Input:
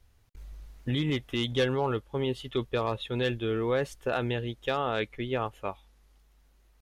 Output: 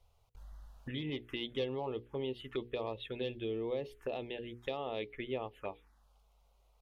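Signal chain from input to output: compressor 2.5:1, threshold -35 dBFS, peak gain reduction 9 dB; tone controls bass -8 dB, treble -10 dB; notches 60/120/180/240/300/360/420/480 Hz; envelope phaser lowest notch 280 Hz, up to 1500 Hz, full sweep at -35.5 dBFS; 2.92–4.73 dynamic EQ 1300 Hz, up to -4 dB, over -54 dBFS, Q 0.97; gain +2 dB

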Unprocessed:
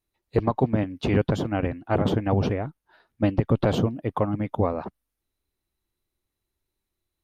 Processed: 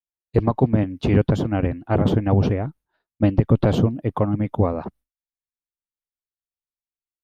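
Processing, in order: expander -46 dBFS; low shelf 370 Hz +6.5 dB

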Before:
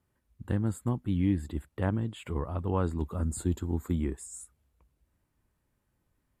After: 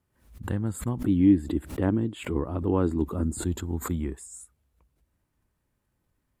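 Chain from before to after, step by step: 1.04–3.43 bell 310 Hz +11 dB 1 oct; backwards sustainer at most 120 dB/s

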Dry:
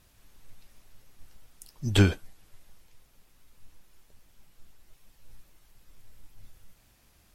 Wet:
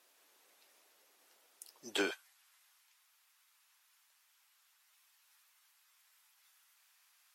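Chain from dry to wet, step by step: HPF 370 Hz 24 dB/oct, from 2.11 s 1000 Hz; limiter -19 dBFS, peak gain reduction 6.5 dB; gain -3.5 dB

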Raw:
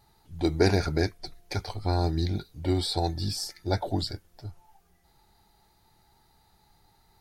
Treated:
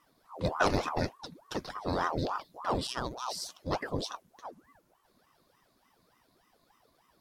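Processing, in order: 2.87–3.28 robotiser 124 Hz; ring modulator with a swept carrier 660 Hz, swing 75%, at 3.4 Hz; gain -2.5 dB

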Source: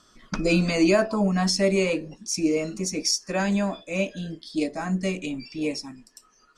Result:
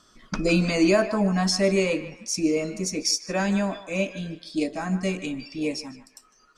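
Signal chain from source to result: narrowing echo 0.152 s, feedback 45%, band-pass 1400 Hz, level -11 dB

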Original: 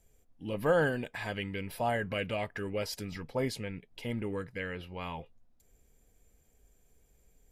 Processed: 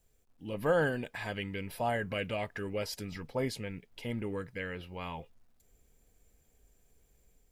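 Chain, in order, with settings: AGC gain up to 4.5 dB; bit-crush 12-bit; gain -5.5 dB

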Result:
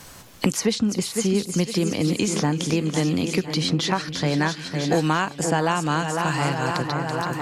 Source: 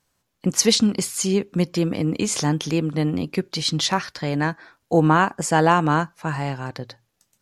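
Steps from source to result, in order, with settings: split-band echo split 2400 Hz, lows 0.505 s, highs 0.331 s, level -10.5 dB; three-band squash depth 100%; gain -2.5 dB

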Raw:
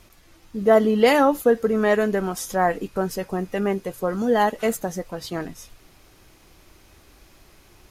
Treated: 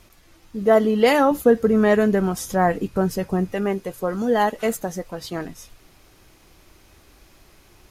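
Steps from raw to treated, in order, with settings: 1.31–3.53 bell 95 Hz +9.5 dB 2.8 oct

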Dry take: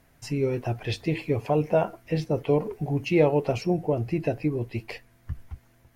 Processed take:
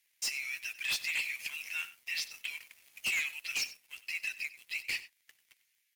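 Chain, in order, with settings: steep high-pass 2100 Hz 36 dB/oct; dynamic EQ 3400 Hz, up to -4 dB, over -53 dBFS, Q 1.7; sample leveller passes 3; hard clip -29 dBFS, distortion -17 dB; on a send: echo 94 ms -16.5 dB

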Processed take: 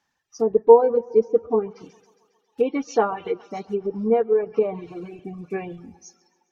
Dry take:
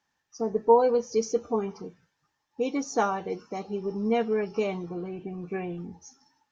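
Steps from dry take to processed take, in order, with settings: block floating point 7-bit; 1.77–3.34 bell 3000 Hz +10.5 dB 0.84 oct; thinning echo 0.136 s, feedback 67%, high-pass 200 Hz, level -13.5 dB; dynamic EQ 440 Hz, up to +6 dB, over -37 dBFS, Q 3.2; treble ducked by the level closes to 1300 Hz, closed at -20.5 dBFS; reverb removal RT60 1.6 s; gain +3.5 dB

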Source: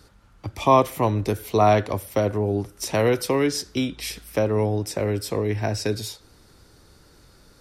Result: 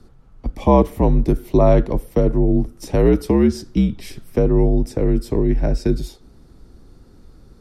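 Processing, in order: frequency shift -65 Hz; tilt shelf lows +9 dB, about 680 Hz; gain +1 dB

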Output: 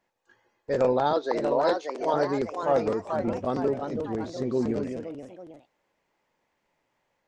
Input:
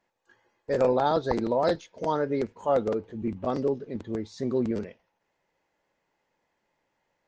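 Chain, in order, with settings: 1.13–2.14 HPF 280 Hz 24 dB/oct; echoes that change speed 0.725 s, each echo +2 st, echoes 3, each echo -6 dB

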